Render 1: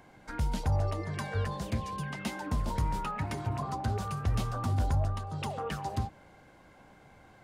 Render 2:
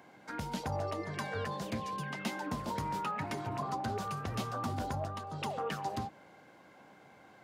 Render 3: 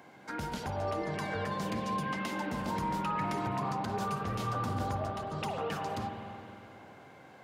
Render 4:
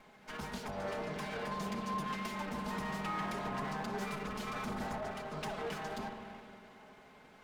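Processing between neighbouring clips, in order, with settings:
high-pass 180 Hz 12 dB/octave; peaking EQ 9.1 kHz -4 dB 0.6 oct
peak limiter -29.5 dBFS, peak gain reduction 7 dB; spring tank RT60 2.9 s, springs 45/51 ms, chirp 65 ms, DRR 3 dB; trim +2.5 dB
comb filter that takes the minimum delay 4.7 ms; trim -3 dB

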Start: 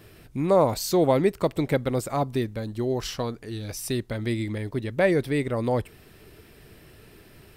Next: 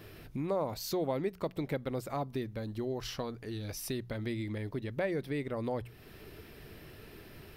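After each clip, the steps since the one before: peaking EQ 8.1 kHz -8 dB 0.56 oct; hum notches 60/120/180 Hz; compression 2:1, threshold -40 dBFS, peak gain reduction 14 dB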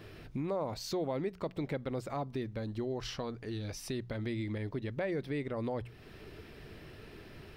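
peaking EQ 13 kHz -14.5 dB 0.72 oct; in parallel at +3 dB: peak limiter -29.5 dBFS, peak gain reduction 8 dB; on the sum: trim -7 dB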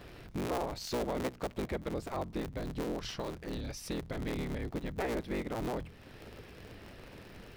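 cycle switcher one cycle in 3, inverted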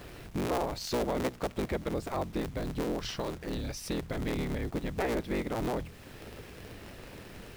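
word length cut 10-bit, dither none; trim +3.5 dB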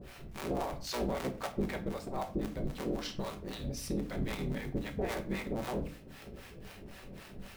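harmonic tremolo 3.8 Hz, depth 100%, crossover 600 Hz; simulated room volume 340 m³, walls furnished, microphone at 1.1 m

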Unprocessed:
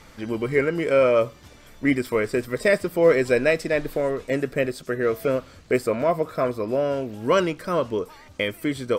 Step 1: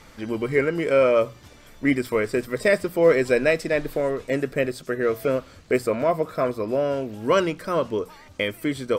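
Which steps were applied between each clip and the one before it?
hum notches 60/120/180 Hz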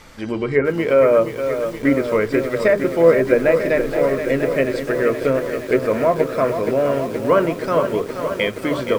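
low-pass that closes with the level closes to 1.5 kHz, closed at -16 dBFS; hum notches 50/100/150/200/250/300/350/400/450 Hz; bit-crushed delay 473 ms, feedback 80%, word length 7-bit, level -8.5 dB; trim +4.5 dB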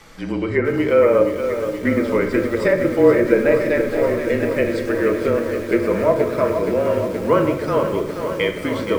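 frequency shift -30 Hz; simulated room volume 580 m³, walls mixed, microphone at 0.65 m; trim -1.5 dB

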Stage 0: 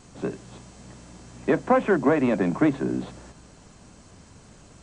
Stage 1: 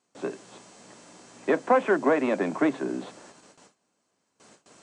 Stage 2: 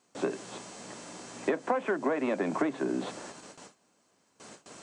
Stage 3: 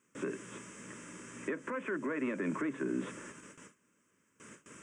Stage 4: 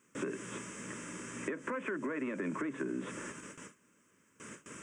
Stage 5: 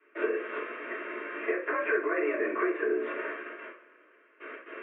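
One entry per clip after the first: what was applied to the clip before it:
high-pass 320 Hz 12 dB/octave; gate with hold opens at -43 dBFS
compression 10:1, threshold -31 dBFS, peak gain reduction 15.5 dB; trim +5.5 dB
peak limiter -23 dBFS, peak gain reduction 7.5 dB; static phaser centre 1.8 kHz, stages 4
compression 6:1, threshold -38 dBFS, peak gain reduction 8 dB; trim +4.5 dB
two-slope reverb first 0.29 s, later 2.3 s, from -22 dB, DRR -9.5 dB; mistuned SSB +54 Hz 320–2500 Hz

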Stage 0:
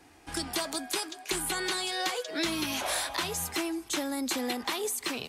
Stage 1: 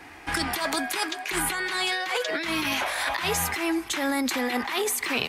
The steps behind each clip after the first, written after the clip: graphic EQ 1/2/8 kHz +4/+9/-4 dB; compressor with a negative ratio -32 dBFS, ratio -1; trim +5 dB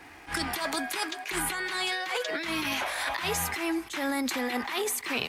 crackle 350 per s -46 dBFS; attacks held to a fixed rise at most 210 dB/s; trim -3.5 dB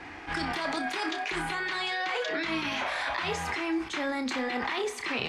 in parallel at -2.5 dB: compressor with a negative ratio -36 dBFS, ratio -0.5; on the sum: distance through air 110 m; flutter echo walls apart 5.3 m, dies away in 0.22 s; trim -2 dB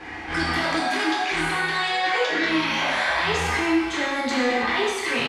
doubling 13 ms -11.5 dB; gated-style reverb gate 350 ms falling, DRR -5 dB; trim +2 dB

